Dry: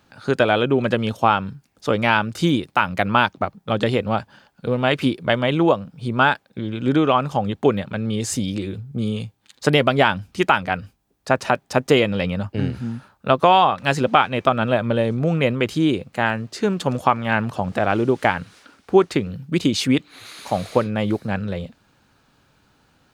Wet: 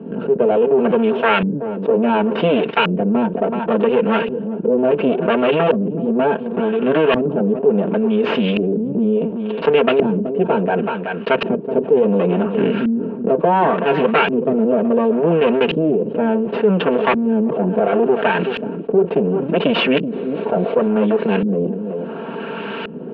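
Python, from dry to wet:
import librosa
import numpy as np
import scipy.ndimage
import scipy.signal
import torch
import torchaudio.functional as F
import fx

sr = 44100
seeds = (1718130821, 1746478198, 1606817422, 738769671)

p1 = fx.lower_of_two(x, sr, delay_ms=4.4)
p2 = fx.cabinet(p1, sr, low_hz=200.0, low_slope=24, high_hz=3200.0, hz=(270.0, 420.0, 770.0, 1200.0, 2000.0, 2800.0), db=(-9, 6, -8, -8, -9, 9))
p3 = p2 + fx.echo_single(p2, sr, ms=377, db=-22.5, dry=0)
p4 = fx.filter_lfo_lowpass(p3, sr, shape='saw_up', hz=0.7, low_hz=270.0, high_hz=2400.0, q=0.87)
y = fx.env_flatten(p4, sr, amount_pct=70)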